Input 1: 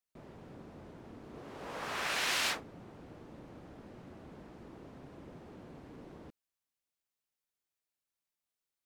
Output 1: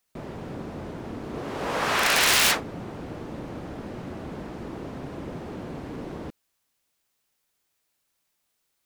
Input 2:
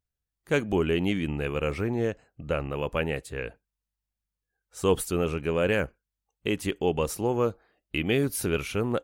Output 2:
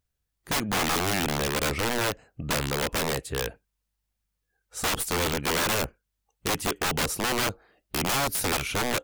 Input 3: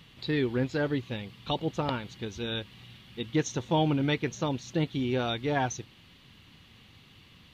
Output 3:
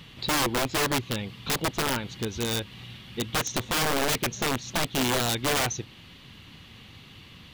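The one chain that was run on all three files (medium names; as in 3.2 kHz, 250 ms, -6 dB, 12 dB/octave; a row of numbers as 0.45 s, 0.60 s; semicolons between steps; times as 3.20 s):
in parallel at -3 dB: compression 4:1, threshold -37 dBFS; on the sum: integer overflow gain 22 dB; normalise loudness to -27 LUFS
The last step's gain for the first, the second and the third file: +10.5 dB, +2.0 dB, +2.5 dB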